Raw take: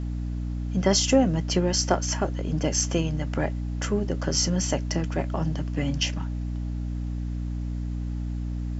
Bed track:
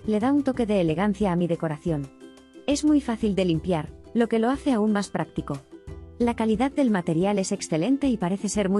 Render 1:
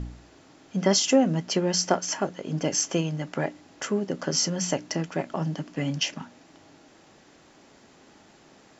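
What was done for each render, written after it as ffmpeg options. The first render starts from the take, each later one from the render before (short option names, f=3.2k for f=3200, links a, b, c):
-af "bandreject=f=60:t=h:w=4,bandreject=f=120:t=h:w=4,bandreject=f=180:t=h:w=4,bandreject=f=240:t=h:w=4,bandreject=f=300:t=h:w=4"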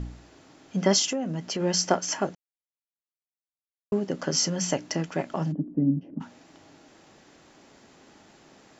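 -filter_complex "[0:a]asplit=3[a][b][c];[a]afade=t=out:st=1.06:d=0.02[d];[b]acompressor=threshold=-28dB:ratio=3:attack=3.2:release=140:knee=1:detection=peak,afade=t=in:st=1.06:d=0.02,afade=t=out:st=1.59:d=0.02[e];[c]afade=t=in:st=1.59:d=0.02[f];[d][e][f]amix=inputs=3:normalize=0,asplit=3[g][h][i];[g]afade=t=out:st=5.51:d=0.02[j];[h]lowpass=f=290:t=q:w=2.4,afade=t=in:st=5.51:d=0.02,afade=t=out:st=6.2:d=0.02[k];[i]afade=t=in:st=6.2:d=0.02[l];[j][k][l]amix=inputs=3:normalize=0,asplit=3[m][n][o];[m]atrim=end=2.35,asetpts=PTS-STARTPTS,afade=t=out:st=2.346:d=0.004:c=hsin[p];[n]atrim=start=2.35:end=3.92,asetpts=PTS-STARTPTS,volume=0[q];[o]atrim=start=3.92,asetpts=PTS-STARTPTS,afade=t=in:d=0.004:c=hsin[r];[p][q][r]concat=n=3:v=0:a=1"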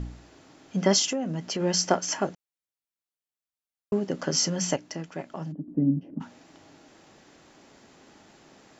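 -filter_complex "[0:a]asplit=3[a][b][c];[a]atrim=end=4.762[d];[b]atrim=start=4.758:end=5.682,asetpts=PTS-STARTPTS,volume=-7dB[e];[c]atrim=start=5.678[f];[d][e]acrossfade=d=0.004:c1=hsin:c2=hsin[g];[g][f]acrossfade=d=0.004:c1=hsin:c2=hsin"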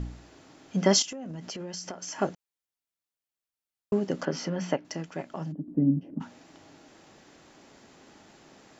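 -filter_complex "[0:a]asettb=1/sr,asplit=3[a][b][c];[a]atrim=end=1.024[d];[b]atrim=start=1.02:end=2.19,asetpts=PTS-STARTPTS,afade=t=in:d=0.004:c=qsin,afade=t=out:st=1.166:d=0.004:c=qsin,acompressor=threshold=-34dB:ratio=10:attack=3.2:release=140:knee=1:detection=peak[e];[c]atrim=start=2.186[f];[d][e]acrossfade=d=0.004:c1=hsin:c2=qsin[g];[g][f]acrossfade=d=0.004:c1=qsin:c2=hsin,asettb=1/sr,asplit=3[h][i][j];[h]atrim=end=4.254[k];[i]atrim=start=4.25:end=4.85,asetpts=PTS-STARTPTS,afade=t=in:d=0.004:c=qsin,afade=t=out:st=0.596:d=0.004:c=qsin,highpass=160,lowpass=2.5k[l];[j]atrim=start=4.846[m];[k][l]acrossfade=d=0.004:c1=hsin:c2=qsin[n];[n][m]acrossfade=d=0.004:c1=qsin:c2=hsin"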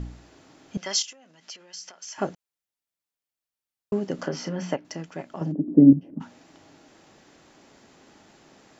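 -filter_complex "[0:a]asettb=1/sr,asplit=3[a][b][c];[a]atrim=end=0.774[d];[b]atrim=start=0.77:end=2.18,asetpts=PTS-STARTPTS,afade=t=in:d=0.004:c=qsin,afade=t=out:st=1.406:d=0.004:c=qsin,bandpass=f=4.1k:t=q:w=0.57[e];[c]atrim=start=2.176[f];[d][e]acrossfade=d=0.004:c1=hsin:c2=qsin[g];[g][f]acrossfade=d=0.004:c1=qsin:c2=hsin,asettb=1/sr,asplit=3[h][i][j];[h]atrim=end=4.154[k];[i]atrim=start=4.15:end=4.76,asetpts=PTS-STARTPTS,afade=t=in:d=0.004:c=qsin,afade=t=out:st=0.606:d=0.004:c=qsin,asplit=2[l][m];[m]adelay=33,volume=-10dB[n];[l][n]amix=inputs=2:normalize=0,atrim=end_sample=26901[o];[j]atrim=start=4.756[p];[k][o]acrossfade=d=0.004:c1=hsin:c2=qsin[q];[q][p]acrossfade=d=0.004:c1=qsin:c2=hsin,asettb=1/sr,asplit=3[r][s][t];[r]atrim=end=5.414[u];[s]atrim=start=5.41:end=5.93,asetpts=PTS-STARTPTS,afade=t=in:d=0.004:c=qsin,afade=t=out:st=0.516:d=0.004:c=qsin,equalizer=f=400:t=o:w=2.3:g=13.5[v];[t]atrim=start=5.926[w];[u][v]acrossfade=d=0.004:c1=hsin:c2=qsin[x];[x][w]acrossfade=d=0.004:c1=qsin:c2=hsin"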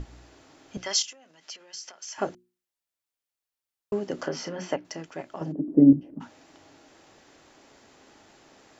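-af "equalizer=f=180:t=o:w=0.78:g=-7,bandreject=f=60:t=h:w=6,bandreject=f=120:t=h:w=6,bandreject=f=180:t=h:w=6,bandreject=f=240:t=h:w=6,bandreject=f=300:t=h:w=6,bandreject=f=360:t=h:w=6"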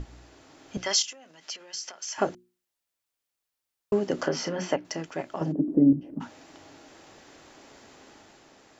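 -af "alimiter=limit=-15dB:level=0:latency=1:release=206,dynaudnorm=f=100:g=13:m=4dB"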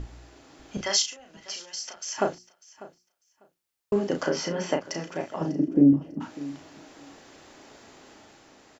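-filter_complex "[0:a]asplit=2[a][b];[b]adelay=35,volume=-6dB[c];[a][c]amix=inputs=2:normalize=0,aecho=1:1:597|1194:0.112|0.018"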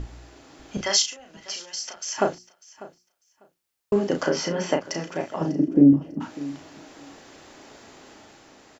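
-af "volume=3dB"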